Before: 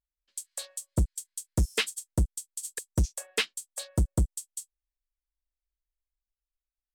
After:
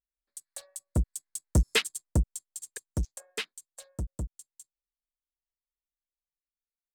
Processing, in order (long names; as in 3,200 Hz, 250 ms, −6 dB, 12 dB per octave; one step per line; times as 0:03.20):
adaptive Wiener filter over 15 samples
source passing by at 0:01.68, 7 m/s, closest 4.4 metres
level +2.5 dB